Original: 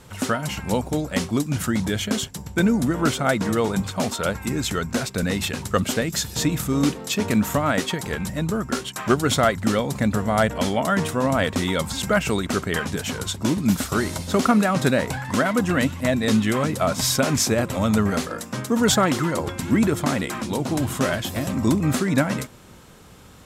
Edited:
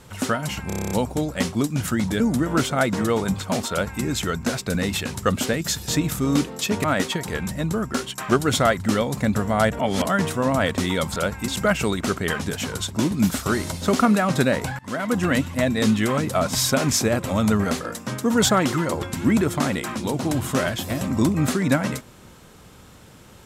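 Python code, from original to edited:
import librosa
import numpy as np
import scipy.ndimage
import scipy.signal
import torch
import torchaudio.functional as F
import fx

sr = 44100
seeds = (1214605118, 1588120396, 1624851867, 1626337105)

y = fx.edit(x, sr, fx.stutter(start_s=0.67, slice_s=0.03, count=9),
    fx.cut(start_s=1.96, length_s=0.72),
    fx.duplicate(start_s=4.19, length_s=0.32, to_s=11.94),
    fx.cut(start_s=7.32, length_s=0.3),
    fx.reverse_span(start_s=10.57, length_s=0.27),
    fx.fade_in_from(start_s=15.25, length_s=0.4, floor_db=-24.0), tone=tone)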